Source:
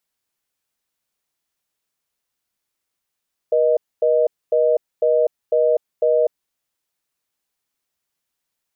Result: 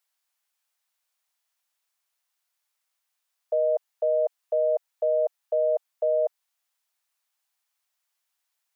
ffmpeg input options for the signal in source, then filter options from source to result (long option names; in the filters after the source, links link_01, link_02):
-f lavfi -i "aevalsrc='0.158*(sin(2*PI*480*t)+sin(2*PI*620*t))*clip(min(mod(t,0.5),0.25-mod(t,0.5))/0.005,0,1)':duration=2.99:sample_rate=44100"
-af "highpass=frequency=660:width=0.5412,highpass=frequency=660:width=1.3066"